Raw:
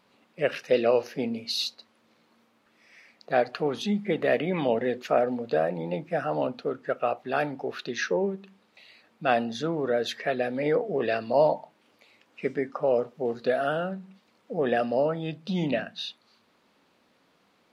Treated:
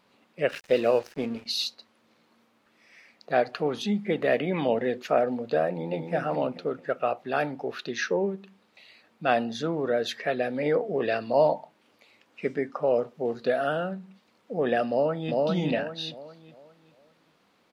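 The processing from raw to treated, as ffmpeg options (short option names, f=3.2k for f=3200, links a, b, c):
-filter_complex "[0:a]asettb=1/sr,asplit=3[a][b][c];[a]atrim=end=0.494[d];[b]atrim=start=0.49:end=1.46,asetpts=PTS-STARTPTS,afade=t=in:d=0.004:c=qsin,afade=t=out:st=0.966:d=0.004:c=qsin,aeval=exprs='sgn(val(0))*max(abs(val(0))-0.00596,0)':c=same[e];[c]atrim=start=1.456[f];[d][e]acrossfade=d=0.004:c1=hsin:c2=qsin[g];[g][f]acrossfade=d=0.004:c1=qsin:c2=hsin,asplit=2[h][i];[i]afade=t=in:st=5.7:d=0.01,afade=t=out:st=6.13:d=0.01,aecho=0:1:220|440|660|880|1100:0.530884|0.238898|0.107504|0.0483768|0.0217696[j];[h][j]amix=inputs=2:normalize=0,asplit=2[k][l];[l]afade=t=in:st=14.88:d=0.01,afade=t=out:st=15.34:d=0.01,aecho=0:1:400|800|1200|1600|2000:0.891251|0.311938|0.109178|0.0382124|0.0133743[m];[k][m]amix=inputs=2:normalize=0"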